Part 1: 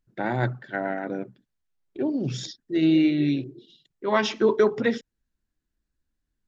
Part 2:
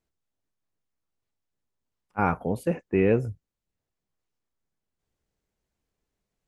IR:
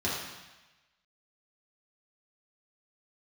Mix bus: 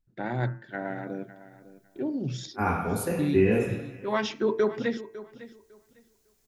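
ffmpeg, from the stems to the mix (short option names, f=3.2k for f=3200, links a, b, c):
-filter_complex "[0:a]lowshelf=f=140:g=6.5,bandreject=f=112.4:t=h:w=4,bandreject=f=224.8:t=h:w=4,bandreject=f=337.2:t=h:w=4,bandreject=f=449.6:t=h:w=4,bandreject=f=562:t=h:w=4,bandreject=f=674.4:t=h:w=4,bandreject=f=786.8:t=h:w=4,bandreject=f=899.2:t=h:w=4,bandreject=f=1.0116k:t=h:w=4,bandreject=f=1.124k:t=h:w=4,bandreject=f=1.2364k:t=h:w=4,bandreject=f=1.3488k:t=h:w=4,bandreject=f=1.4612k:t=h:w=4,bandreject=f=1.5736k:t=h:w=4,bandreject=f=1.686k:t=h:w=4,bandreject=f=1.7984k:t=h:w=4,bandreject=f=1.9108k:t=h:w=4,bandreject=f=2.0232k:t=h:w=4,bandreject=f=2.1356k:t=h:w=4,bandreject=f=2.248k:t=h:w=4,bandreject=f=2.3604k:t=h:w=4,bandreject=f=2.4728k:t=h:w=4,bandreject=f=2.5852k:t=h:w=4,bandreject=f=2.6976k:t=h:w=4,volume=-5.5dB,asplit=3[a][b][c];[a]atrim=end=2.65,asetpts=PTS-STARTPTS,afade=t=out:st=2.646:d=0.004:c=hsin[d];[b]atrim=start=2.65:end=3.19,asetpts=PTS-STARTPTS,volume=0[e];[c]atrim=start=3.19,asetpts=PTS-STARTPTS,afade=t=in:d=0.004:c=hsin[f];[d][e][f]concat=n=3:v=0:a=1,asplit=3[g][h][i];[h]volume=-16.5dB[j];[1:a]dynaudnorm=f=220:g=3:m=15dB,crystalizer=i=5:c=0,adelay=400,volume=-15dB,asplit=3[k][l][m];[l]volume=-7dB[n];[m]volume=-22dB[o];[i]apad=whole_len=303261[p];[k][p]sidechaincompress=threshold=-39dB:ratio=8:attack=16:release=767[q];[2:a]atrim=start_sample=2205[r];[n][r]afir=irnorm=-1:irlink=0[s];[j][o]amix=inputs=2:normalize=0,aecho=0:1:553|1106|1659:1|0.19|0.0361[t];[g][q][s][t]amix=inputs=4:normalize=0"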